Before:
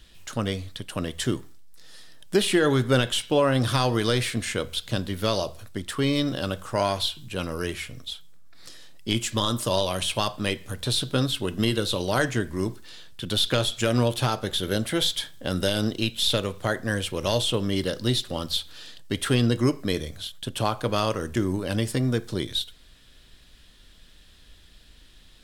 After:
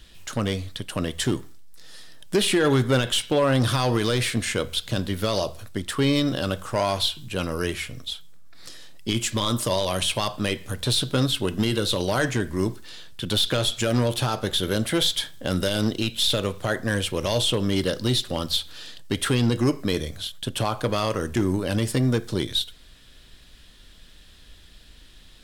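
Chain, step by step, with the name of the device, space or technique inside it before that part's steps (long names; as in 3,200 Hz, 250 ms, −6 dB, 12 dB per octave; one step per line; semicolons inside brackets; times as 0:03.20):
limiter into clipper (brickwall limiter −13.5 dBFS, peak gain reduction 5 dB; hard clipping −17 dBFS, distortion −21 dB)
level +3 dB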